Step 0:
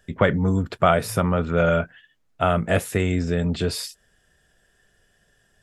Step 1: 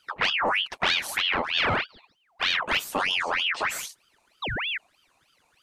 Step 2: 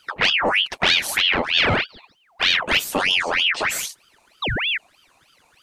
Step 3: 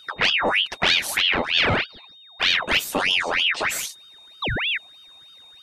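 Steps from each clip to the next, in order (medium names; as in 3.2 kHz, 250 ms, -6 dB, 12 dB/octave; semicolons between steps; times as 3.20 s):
painted sound fall, 4.42–4.78 s, 210–1400 Hz -26 dBFS; saturation -14.5 dBFS, distortion -12 dB; ring modulator with a swept carrier 1.9 kHz, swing 65%, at 3.2 Hz
dynamic bell 1.1 kHz, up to -7 dB, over -40 dBFS, Q 1.2; trim +8 dB
whistle 3.7 kHz -44 dBFS; trim -1.5 dB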